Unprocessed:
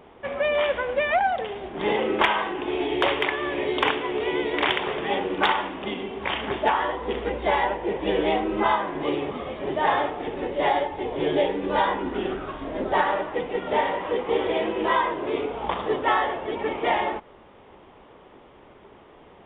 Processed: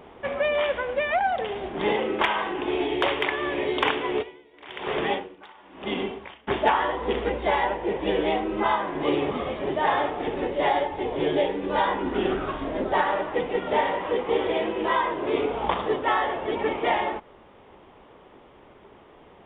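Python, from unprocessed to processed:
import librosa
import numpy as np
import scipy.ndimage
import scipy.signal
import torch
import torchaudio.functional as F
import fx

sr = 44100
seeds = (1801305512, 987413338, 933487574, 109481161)

y = fx.tremolo_db(x, sr, hz=1.0, depth_db=31, at=(4.21, 6.47), fade=0.02)
y = fx.rider(y, sr, range_db=4, speed_s=0.5)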